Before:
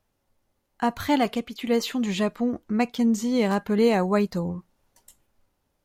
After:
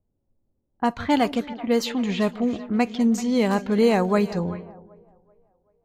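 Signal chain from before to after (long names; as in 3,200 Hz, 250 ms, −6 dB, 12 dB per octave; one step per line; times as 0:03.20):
echo with a time of its own for lows and highs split 610 Hz, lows 158 ms, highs 384 ms, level −15 dB
low-pass that shuts in the quiet parts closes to 380 Hz, open at −19 dBFS
level +1.5 dB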